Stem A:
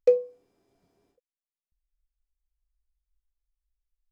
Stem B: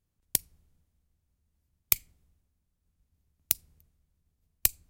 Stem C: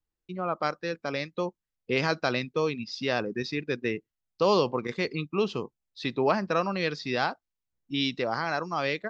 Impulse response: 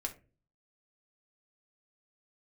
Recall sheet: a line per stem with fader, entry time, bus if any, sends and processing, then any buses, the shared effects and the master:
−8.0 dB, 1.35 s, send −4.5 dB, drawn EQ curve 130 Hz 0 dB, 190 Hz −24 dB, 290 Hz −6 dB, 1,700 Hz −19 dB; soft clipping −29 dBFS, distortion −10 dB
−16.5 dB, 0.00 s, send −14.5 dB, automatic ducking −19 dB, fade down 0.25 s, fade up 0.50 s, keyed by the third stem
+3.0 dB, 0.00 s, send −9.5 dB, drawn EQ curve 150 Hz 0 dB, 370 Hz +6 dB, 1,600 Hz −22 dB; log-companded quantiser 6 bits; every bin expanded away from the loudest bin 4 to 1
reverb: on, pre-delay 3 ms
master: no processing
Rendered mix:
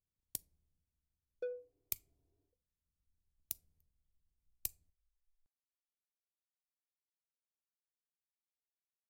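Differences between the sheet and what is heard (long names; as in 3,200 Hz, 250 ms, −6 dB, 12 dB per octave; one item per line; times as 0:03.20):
stem C: muted
master: extra parametric band 1,800 Hz −7 dB 1.5 octaves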